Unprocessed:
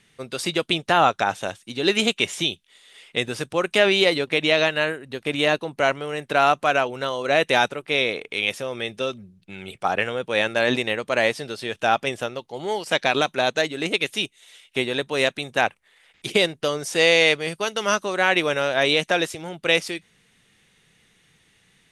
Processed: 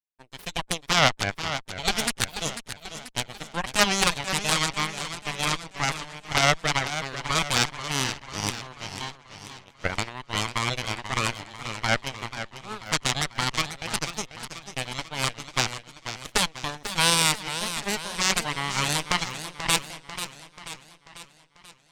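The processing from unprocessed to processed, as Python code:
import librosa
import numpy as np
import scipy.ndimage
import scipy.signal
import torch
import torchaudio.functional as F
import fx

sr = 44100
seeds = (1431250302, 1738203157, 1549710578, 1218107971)

y = fx.cheby_harmonics(x, sr, harmonics=(3, 6, 7, 8), levels_db=(-11, -8, -33, -17), full_scale_db=-3.0)
y = fx.echo_warbled(y, sr, ms=489, feedback_pct=54, rate_hz=2.8, cents=141, wet_db=-10.5)
y = y * librosa.db_to_amplitude(-1.0)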